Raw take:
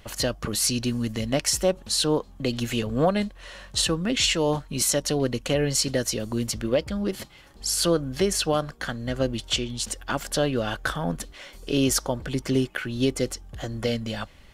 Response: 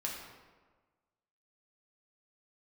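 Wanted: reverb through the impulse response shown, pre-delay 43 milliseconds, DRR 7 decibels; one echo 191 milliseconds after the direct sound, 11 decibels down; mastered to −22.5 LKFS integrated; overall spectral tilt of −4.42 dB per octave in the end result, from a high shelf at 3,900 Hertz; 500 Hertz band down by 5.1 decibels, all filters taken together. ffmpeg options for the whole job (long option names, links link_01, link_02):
-filter_complex "[0:a]equalizer=frequency=500:width_type=o:gain=-6,highshelf=frequency=3900:gain=-8,aecho=1:1:191:0.282,asplit=2[link_01][link_02];[1:a]atrim=start_sample=2205,adelay=43[link_03];[link_02][link_03]afir=irnorm=-1:irlink=0,volume=-9dB[link_04];[link_01][link_04]amix=inputs=2:normalize=0,volume=5.5dB"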